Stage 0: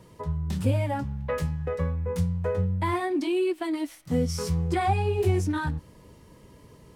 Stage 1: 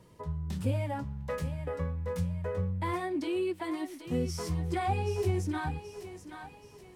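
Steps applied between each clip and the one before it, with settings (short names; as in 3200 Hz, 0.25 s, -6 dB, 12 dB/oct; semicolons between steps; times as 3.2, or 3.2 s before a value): thinning echo 0.778 s, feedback 46%, high-pass 430 Hz, level -9 dB; gain -6 dB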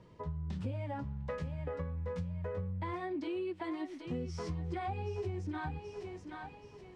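air absorption 130 m; compressor 5:1, threshold -35 dBFS, peak gain reduction 10.5 dB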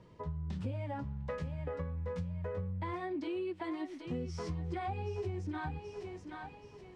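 nothing audible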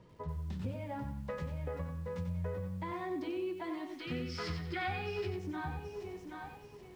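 spectral gain 3.99–5.28, 1200–5400 Hz +11 dB; lo-fi delay 92 ms, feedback 35%, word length 10-bit, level -7 dB; gain -1 dB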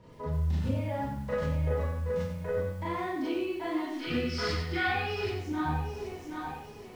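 Schroeder reverb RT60 0.35 s, combs from 26 ms, DRR -6 dB; gain +1.5 dB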